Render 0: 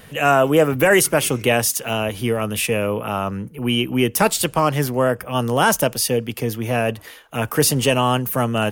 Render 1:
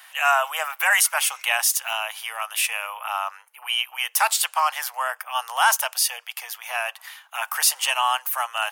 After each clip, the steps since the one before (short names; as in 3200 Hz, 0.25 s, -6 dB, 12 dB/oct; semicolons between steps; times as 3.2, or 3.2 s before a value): steep high-pass 770 Hz 48 dB/oct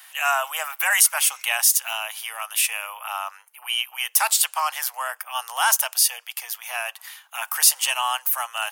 high shelf 4100 Hz +8.5 dB; gain -3.5 dB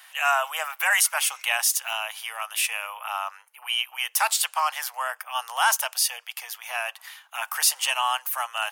high shelf 6700 Hz -8 dB